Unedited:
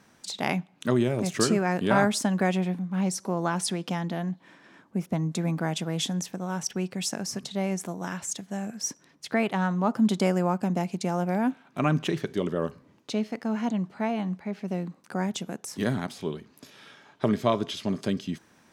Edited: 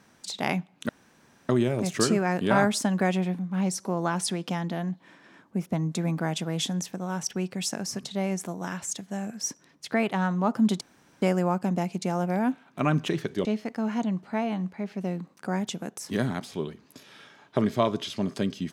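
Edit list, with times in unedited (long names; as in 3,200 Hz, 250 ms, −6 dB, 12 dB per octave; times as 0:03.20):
0:00.89: splice in room tone 0.60 s
0:10.21: splice in room tone 0.41 s
0:12.44–0:13.12: remove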